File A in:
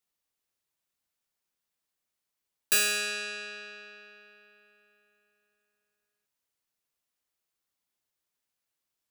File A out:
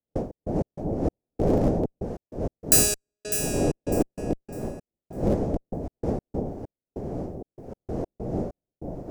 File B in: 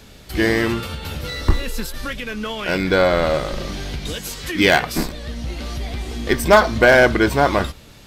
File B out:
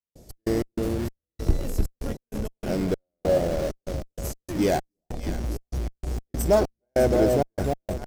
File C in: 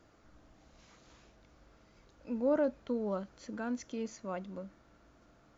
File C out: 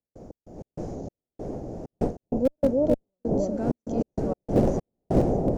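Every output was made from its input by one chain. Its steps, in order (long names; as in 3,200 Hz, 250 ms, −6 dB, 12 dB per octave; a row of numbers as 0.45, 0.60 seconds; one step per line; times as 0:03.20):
wind on the microphone 520 Hz −37 dBFS
on a send: delay that swaps between a low-pass and a high-pass 301 ms, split 940 Hz, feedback 51%, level −3.5 dB
on the sum: tape wow and flutter 18 cents
gate pattern ".x.x.xx..xxx" 97 BPM −60 dB
flat-topped bell 2,000 Hz −15.5 dB 2.4 octaves
in parallel at −7.5 dB: comparator with hysteresis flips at −23.5 dBFS
on the sum: loudness normalisation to −27 LKFS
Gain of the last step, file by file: +8.5, −6.5, +9.5 decibels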